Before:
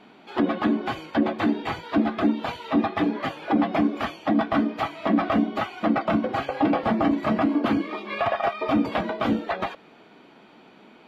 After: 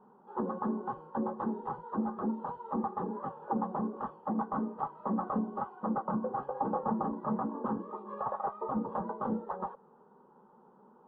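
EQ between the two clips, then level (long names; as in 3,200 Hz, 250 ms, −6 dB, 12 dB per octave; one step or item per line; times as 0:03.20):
low-pass with resonance 880 Hz, resonance Q 2.1
high-frequency loss of the air 130 metres
phaser with its sweep stopped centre 450 Hz, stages 8
−7.5 dB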